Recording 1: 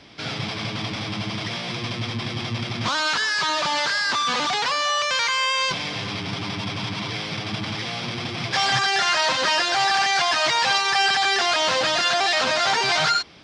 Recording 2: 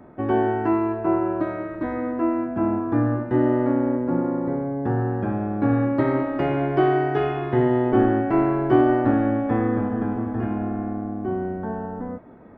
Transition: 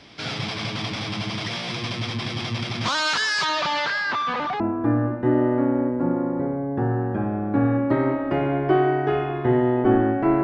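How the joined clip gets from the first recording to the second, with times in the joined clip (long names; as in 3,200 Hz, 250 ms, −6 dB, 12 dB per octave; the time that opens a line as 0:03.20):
recording 1
0:03.44–0:04.60: low-pass filter 5,400 Hz → 1,300 Hz
0:04.60: continue with recording 2 from 0:02.68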